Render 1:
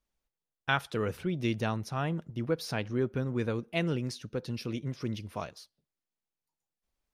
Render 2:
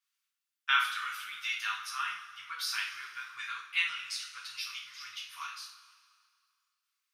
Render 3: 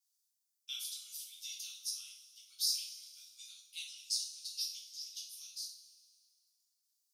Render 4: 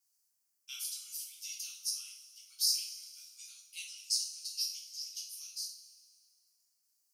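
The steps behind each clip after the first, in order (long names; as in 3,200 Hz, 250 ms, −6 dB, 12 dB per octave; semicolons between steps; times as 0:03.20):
elliptic high-pass filter 1,200 Hz, stop band 50 dB; coupled-rooms reverb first 0.46 s, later 2.1 s, from −16 dB, DRR −5.5 dB
inverse Chebyshev high-pass filter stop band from 1,900 Hz, stop band 50 dB; level +5.5 dB
parametric band 3,600 Hz −15 dB 0.26 octaves; level +4.5 dB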